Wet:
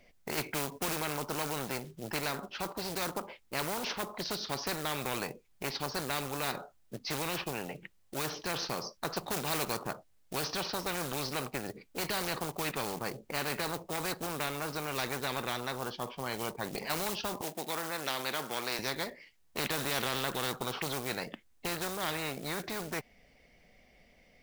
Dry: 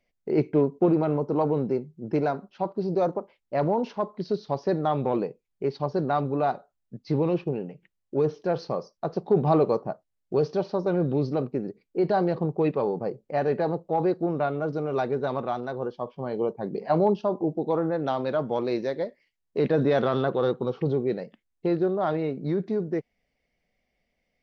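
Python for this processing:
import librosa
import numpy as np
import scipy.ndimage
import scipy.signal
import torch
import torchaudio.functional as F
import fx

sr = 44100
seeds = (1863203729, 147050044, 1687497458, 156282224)

y = fx.quant_float(x, sr, bits=4)
y = fx.highpass(y, sr, hz=560.0, slope=12, at=(17.41, 18.79))
y = fx.spectral_comp(y, sr, ratio=4.0)
y = F.gain(torch.from_numpy(y), -5.5).numpy()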